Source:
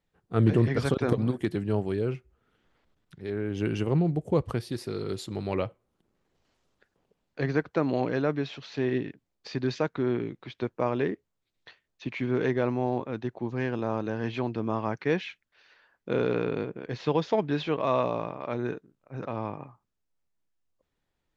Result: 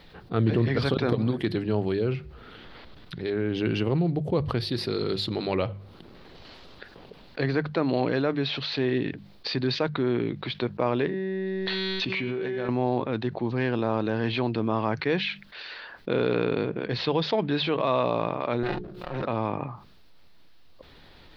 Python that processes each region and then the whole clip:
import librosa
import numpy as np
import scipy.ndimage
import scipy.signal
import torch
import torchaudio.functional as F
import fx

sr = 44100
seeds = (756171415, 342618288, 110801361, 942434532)

y = fx.chain(x, sr, fx.comb_fb(f0_hz=190.0, decay_s=1.6, harmonics='all', damping=0.0, mix_pct=90),
    fx.env_flatten(amount_pct=100), at=(11.06, 12.69))
y = fx.chain(y, sr, fx.lower_of_two(delay_ms=5.6),
    fx.hum_notches(base_hz=60, count=8),
    fx.pre_swell(db_per_s=120.0), at=(18.63, 19.22))
y = fx.high_shelf_res(y, sr, hz=5500.0, db=-9.0, q=3.0)
y = fx.hum_notches(y, sr, base_hz=50, count=4)
y = fx.env_flatten(y, sr, amount_pct=50)
y = y * librosa.db_to_amplitude(-2.0)